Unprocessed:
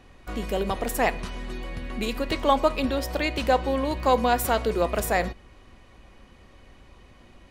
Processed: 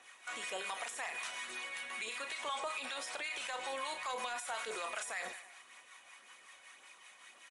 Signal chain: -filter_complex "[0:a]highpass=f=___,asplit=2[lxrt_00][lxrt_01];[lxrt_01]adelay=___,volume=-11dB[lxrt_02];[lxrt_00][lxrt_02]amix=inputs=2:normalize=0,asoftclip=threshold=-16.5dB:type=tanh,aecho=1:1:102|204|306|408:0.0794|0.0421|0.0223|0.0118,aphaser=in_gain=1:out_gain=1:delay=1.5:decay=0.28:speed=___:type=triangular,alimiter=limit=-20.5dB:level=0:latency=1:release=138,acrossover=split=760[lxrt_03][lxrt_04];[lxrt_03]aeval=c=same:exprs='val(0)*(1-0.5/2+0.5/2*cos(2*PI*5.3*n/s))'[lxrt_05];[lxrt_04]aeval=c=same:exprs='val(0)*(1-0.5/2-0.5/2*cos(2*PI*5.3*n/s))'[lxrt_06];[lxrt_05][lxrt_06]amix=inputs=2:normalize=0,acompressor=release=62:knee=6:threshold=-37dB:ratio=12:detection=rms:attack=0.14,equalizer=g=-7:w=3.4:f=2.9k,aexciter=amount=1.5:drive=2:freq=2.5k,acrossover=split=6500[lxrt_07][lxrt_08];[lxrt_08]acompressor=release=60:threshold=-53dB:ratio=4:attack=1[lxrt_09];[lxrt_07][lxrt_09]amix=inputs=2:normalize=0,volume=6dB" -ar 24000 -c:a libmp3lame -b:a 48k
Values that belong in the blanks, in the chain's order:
1.4k, 32, 1.9